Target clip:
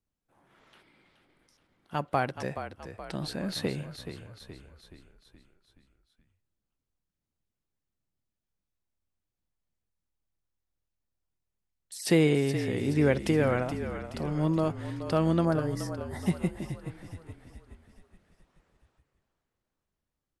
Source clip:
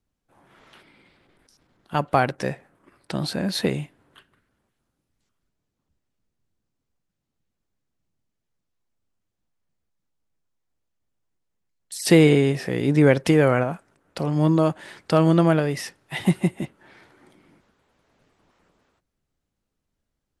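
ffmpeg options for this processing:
-filter_complex "[0:a]asettb=1/sr,asplit=3[a][b][c];[a]atrim=end=15.454[d];[b]atrim=start=15.45:end=16.26,asetpts=PTS-STARTPTS,afade=t=in:d=0.004:c=qsin,afade=t=out:st=0.806:d=0.004:c=qsin,asuperstop=centerf=2800:order=4:qfactor=0.94[e];[c]atrim=start=16.256[f];[d][e]acrossfade=d=0.004:c1=hsin:c2=qsin[g];[g][f]acrossfade=d=0.004:c1=qsin:c2=hsin,asplit=7[h][i][j][k][l][m][n];[i]adelay=424,afreqshift=-40,volume=-10dB[o];[j]adelay=848,afreqshift=-80,volume=-15.7dB[p];[k]adelay=1272,afreqshift=-120,volume=-21.4dB[q];[l]adelay=1696,afreqshift=-160,volume=-27dB[r];[m]adelay=2120,afreqshift=-200,volume=-32.7dB[s];[n]adelay=2544,afreqshift=-240,volume=-38.4dB[t];[h][o][p][q][r][s][t]amix=inputs=7:normalize=0,volume=-8dB"

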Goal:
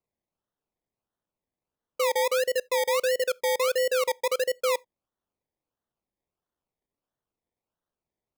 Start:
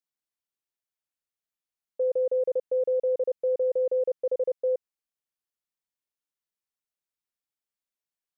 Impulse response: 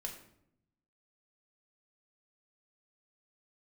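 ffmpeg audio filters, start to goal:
-filter_complex "[0:a]acrusher=samples=25:mix=1:aa=0.000001:lfo=1:lforange=15:lforate=1.5,asettb=1/sr,asplit=3[a][b][c];[a]atrim=end=2.474[d];[b]atrim=start=2.47:end=3.68,asetpts=PTS-STARTPTS,afade=t=in:d=0.004:c=qsin,afade=t=out:st=1.206:d=0.004:c=qsin,asuperstop=centerf=750:order=4:qfactor=3.4[e];[c]atrim=start=3.676[f];[d][e]acrossfade=d=0.004:c1=hsin:c2=qsin[g];[g][f]acrossfade=d=0.004:c1=qsin:c2=hsin,asplit=2[h][i];[1:a]atrim=start_sample=2205,atrim=end_sample=3969[j];[i][j]afir=irnorm=-1:irlink=0,volume=-19dB[k];[h][k]amix=inputs=2:normalize=0"

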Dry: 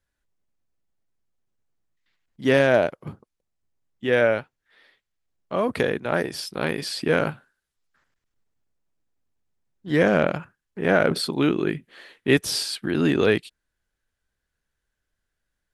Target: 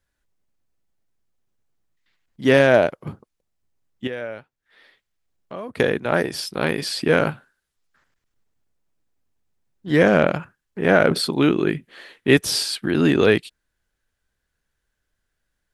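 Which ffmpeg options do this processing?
-filter_complex "[0:a]asettb=1/sr,asplit=3[a][b][c];[a]atrim=end=4.074[d];[b]atrim=start=4.07:end=5.8,asetpts=PTS-STARTPTS,afade=t=in:d=0.004:c=qsin,afade=t=out:st=1.726:d=0.004:c=qsin,acompressor=threshold=-44dB:ratio=2[e];[c]atrim=start=5.796[f];[d][e]acrossfade=d=0.004:c1=hsin:c2=qsin[g];[g][f]acrossfade=d=0.004:c1=qsin:c2=hsin,volume=3.5dB"

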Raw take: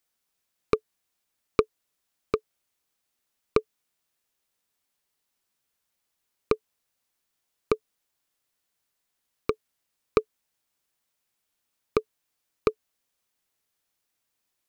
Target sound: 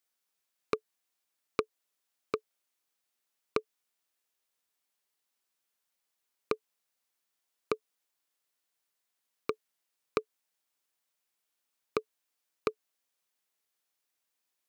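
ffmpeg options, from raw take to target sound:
-af "highpass=f=330:p=1,acompressor=threshold=-22dB:ratio=3,volume=-3.5dB"

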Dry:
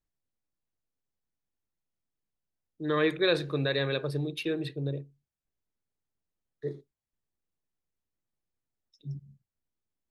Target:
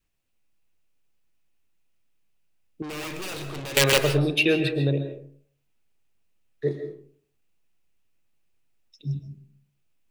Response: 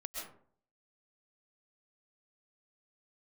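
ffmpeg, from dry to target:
-filter_complex "[0:a]adynamicequalizer=threshold=0.00501:dfrequency=720:dqfactor=3:tfrequency=720:tqfactor=3:attack=5:release=100:ratio=0.375:range=2.5:mode=boostabove:tftype=bell,aeval=exprs='(mod(9.44*val(0)+1,2)-1)/9.44':c=same,equalizer=f=2.6k:t=o:w=0.46:g=9.5,asettb=1/sr,asplit=3[a][b][c];[a]atrim=end=2.824[d];[b]atrim=start=2.82:end=3.77,asetpts=PTS-STARTPTS,afade=t=in:d=0.004:c=qsin,afade=t=out:st=0.946:d=0.004:c=qsin,aeval=exprs='(tanh(141*val(0)+0.1)-tanh(0.1))/141':c=same[e];[c]atrim=start=3.766[f];[d][e]acrossfade=d=0.004:c1=hsin:c2=qsin[g];[g][f]acrossfade=d=0.004:c1=qsin:c2=hsin,asplit=2[h][i];[1:a]atrim=start_sample=2205[j];[i][j]afir=irnorm=-1:irlink=0,volume=-2dB[k];[h][k]amix=inputs=2:normalize=0,volume=5.5dB"

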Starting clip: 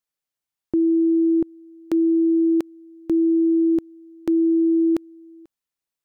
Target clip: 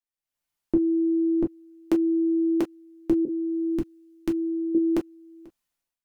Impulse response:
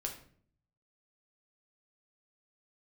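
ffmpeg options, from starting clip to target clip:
-filter_complex "[0:a]asettb=1/sr,asplit=3[a][b][c];[a]atrim=end=3.254[d];[b]atrim=start=3.25:end=4.75,asetpts=PTS-STARTPTS,afade=t=in:d=0.004:c=qsin,afade=t=out:st=1.496:d=0.004:c=qsin,equalizer=f=580:t=o:w=1.5:g=-11[e];[c]atrim=start=4.746[f];[d][e]acrossfade=d=0.004:c1=hsin:c2=qsin[g];[g][f]acrossfade=d=0.004:c1=qsin:c2=hsin,dynaudnorm=f=100:g=7:m=16dB[h];[1:a]atrim=start_sample=2205,atrim=end_sample=3969,asetrate=83790,aresample=44100[i];[h][i]afir=irnorm=-1:irlink=0,volume=-4dB"

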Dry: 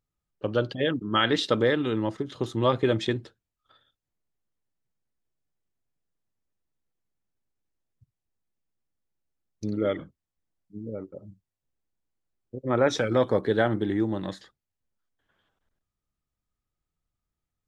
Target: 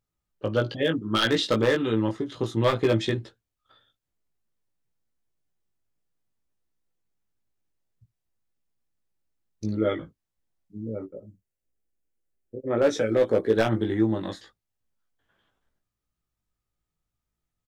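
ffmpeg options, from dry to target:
-filter_complex "[0:a]asettb=1/sr,asplit=3[a][b][c];[a]atrim=end=11.054[d];[b]atrim=start=11.05:end=13.57,asetpts=PTS-STARTPTS,afade=t=in:d=0.004:c=qsin,afade=t=out:st=2.516:d=0.004:c=qsin,equalizer=f=125:t=o:w=1:g=-7,equalizer=f=500:t=o:w=1:g=3,equalizer=f=1k:t=o:w=1:g=-9,equalizer=f=4k:t=o:w=1:g=-7[e];[c]atrim=start=13.566[f];[d][e]acrossfade=d=0.004:c1=hsin:c2=qsin[g];[g][f]acrossfade=d=0.004:c1=qsin:c2=hsin,aeval=exprs='0.188*(abs(mod(val(0)/0.188+3,4)-2)-1)':c=same,asplit=2[h][i];[i]adelay=18,volume=-4dB[j];[h][j]amix=inputs=2:normalize=0"

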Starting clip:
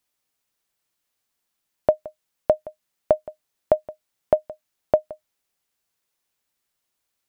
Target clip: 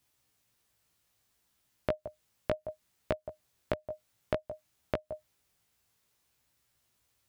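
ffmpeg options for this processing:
-af "alimiter=limit=-9dB:level=0:latency=1:release=227,equalizer=f=87:t=o:w=1.5:g=13.5,acompressor=threshold=-32dB:ratio=10,flanger=delay=15.5:depth=2.6:speed=0.61,volume=6.5dB"

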